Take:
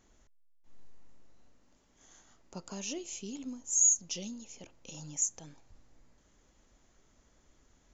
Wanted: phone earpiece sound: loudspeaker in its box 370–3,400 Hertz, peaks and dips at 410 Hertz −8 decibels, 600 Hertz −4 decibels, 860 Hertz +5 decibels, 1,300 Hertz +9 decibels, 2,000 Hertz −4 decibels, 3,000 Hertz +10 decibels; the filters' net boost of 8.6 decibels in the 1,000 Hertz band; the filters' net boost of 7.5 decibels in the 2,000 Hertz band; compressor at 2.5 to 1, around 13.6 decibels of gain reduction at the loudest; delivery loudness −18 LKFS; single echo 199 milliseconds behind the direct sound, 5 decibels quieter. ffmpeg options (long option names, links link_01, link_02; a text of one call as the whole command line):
ffmpeg -i in.wav -af "equalizer=frequency=1000:width_type=o:gain=4.5,equalizer=frequency=2000:width_type=o:gain=5,acompressor=threshold=-42dB:ratio=2.5,highpass=370,equalizer=frequency=410:width_type=q:width=4:gain=-8,equalizer=frequency=600:width_type=q:width=4:gain=-4,equalizer=frequency=860:width_type=q:width=4:gain=5,equalizer=frequency=1300:width_type=q:width=4:gain=9,equalizer=frequency=2000:width_type=q:width=4:gain=-4,equalizer=frequency=3000:width_type=q:width=4:gain=10,lowpass=frequency=3400:width=0.5412,lowpass=frequency=3400:width=1.3066,aecho=1:1:199:0.562,volume=29.5dB" out.wav